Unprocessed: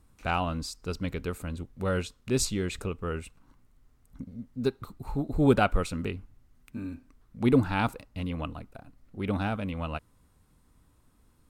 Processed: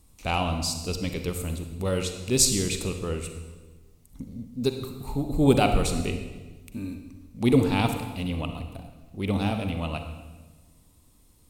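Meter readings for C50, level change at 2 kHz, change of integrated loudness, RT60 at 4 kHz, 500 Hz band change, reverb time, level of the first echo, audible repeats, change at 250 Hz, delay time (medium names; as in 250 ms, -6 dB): 7.0 dB, +1.0 dB, +4.0 dB, 1.1 s, +3.0 dB, 1.3 s, no echo, no echo, +3.0 dB, no echo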